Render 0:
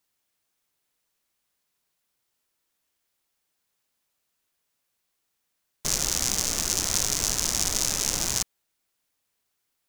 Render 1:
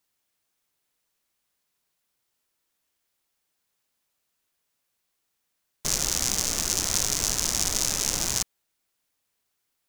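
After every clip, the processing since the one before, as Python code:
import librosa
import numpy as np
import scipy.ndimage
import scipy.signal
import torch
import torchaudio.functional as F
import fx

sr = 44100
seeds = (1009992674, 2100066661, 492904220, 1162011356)

y = x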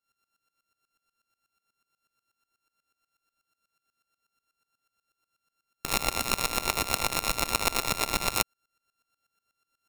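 y = np.r_[np.sort(x[:len(x) // 32 * 32].reshape(-1, 32), axis=1).ravel(), x[len(x) // 32 * 32:]]
y = fx.rider(y, sr, range_db=10, speed_s=0.5)
y = fx.tremolo_decay(y, sr, direction='swelling', hz=8.2, depth_db=19)
y = y * librosa.db_to_amplitude(4.5)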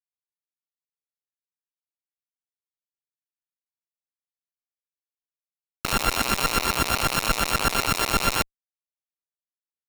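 y = fx.fuzz(x, sr, gain_db=31.0, gate_db=-34.0)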